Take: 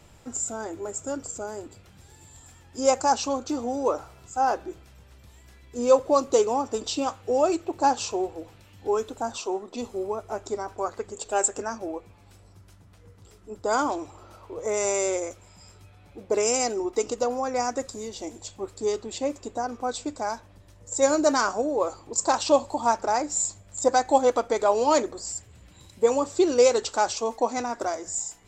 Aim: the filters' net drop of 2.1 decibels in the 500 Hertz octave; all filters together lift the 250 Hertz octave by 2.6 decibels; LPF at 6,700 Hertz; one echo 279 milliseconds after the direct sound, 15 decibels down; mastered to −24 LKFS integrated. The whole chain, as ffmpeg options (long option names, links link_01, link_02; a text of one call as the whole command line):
ffmpeg -i in.wav -af "lowpass=6700,equalizer=frequency=250:width_type=o:gain=4.5,equalizer=frequency=500:width_type=o:gain=-3.5,aecho=1:1:279:0.178,volume=3dB" out.wav